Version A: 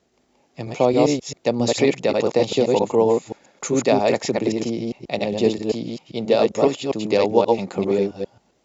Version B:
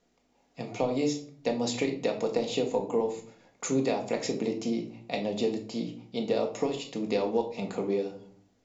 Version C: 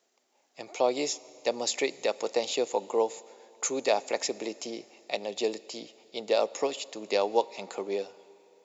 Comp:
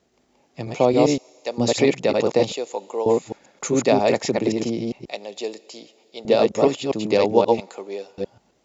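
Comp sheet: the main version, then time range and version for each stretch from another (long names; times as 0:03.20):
A
0:01.18–0:01.58: punch in from C
0:02.52–0:03.06: punch in from C
0:05.08–0:06.25: punch in from C
0:07.60–0:08.18: punch in from C
not used: B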